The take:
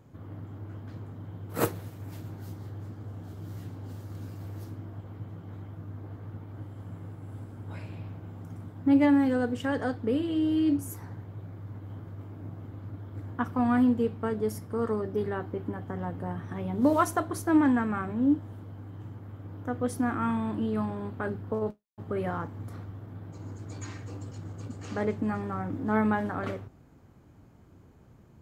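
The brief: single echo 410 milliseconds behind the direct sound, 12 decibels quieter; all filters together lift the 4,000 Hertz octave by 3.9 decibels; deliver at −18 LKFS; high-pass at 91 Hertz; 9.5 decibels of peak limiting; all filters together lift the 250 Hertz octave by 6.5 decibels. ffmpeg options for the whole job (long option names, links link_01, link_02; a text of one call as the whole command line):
ffmpeg -i in.wav -af "highpass=91,equalizer=frequency=250:width_type=o:gain=7.5,equalizer=frequency=4000:width_type=o:gain=5.5,alimiter=limit=-16.5dB:level=0:latency=1,aecho=1:1:410:0.251,volume=9.5dB" out.wav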